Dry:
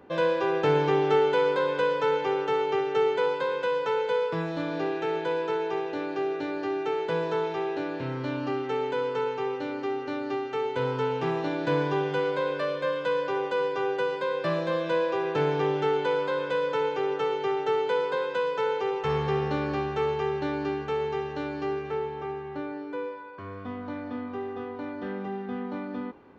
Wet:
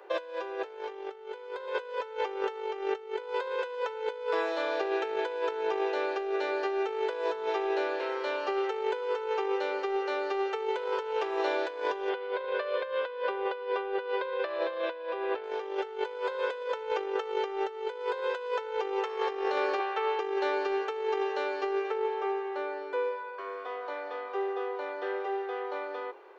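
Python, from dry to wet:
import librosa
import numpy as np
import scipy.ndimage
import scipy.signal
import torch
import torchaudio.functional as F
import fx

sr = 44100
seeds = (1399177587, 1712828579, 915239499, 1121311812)

y = fx.lowpass(x, sr, hz=4100.0, slope=24, at=(12.09, 15.44))
y = fx.bandpass_edges(y, sr, low_hz=600.0, high_hz=3700.0, at=(19.79, 20.19))
y = scipy.signal.sosfilt(scipy.signal.butter(12, 360.0, 'highpass', fs=sr, output='sos'), y)
y = fx.over_compress(y, sr, threshold_db=-31.0, ratio=-0.5)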